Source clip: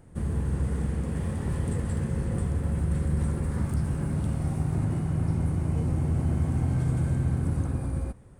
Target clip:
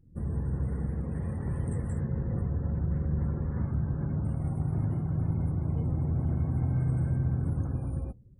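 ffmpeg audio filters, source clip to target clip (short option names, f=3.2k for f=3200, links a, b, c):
-filter_complex "[0:a]asettb=1/sr,asplit=3[a][b][c];[a]atrim=end=2.014[d];[b]atrim=start=2.01:end=4.25,asetpts=PTS-STARTPTS,afade=t=in:d=0.004:c=qsin,afade=t=out:st=2.236:d=0.004:c=qsin,aemphasis=mode=reproduction:type=50fm[e];[c]atrim=start=4.246[f];[d][e]acrossfade=d=0.004:c1=hsin:c2=qsin[g];[g][f]acrossfade=d=0.004:c1=qsin:c2=hsin,afftdn=nr=26:nf=-47,adynamicequalizer=threshold=0.0112:dfrequency=120:dqfactor=2.2:tfrequency=120:tqfactor=2.2:attack=5:release=100:ratio=0.375:range=2:mode=boostabove:tftype=bell,volume=-4.5dB"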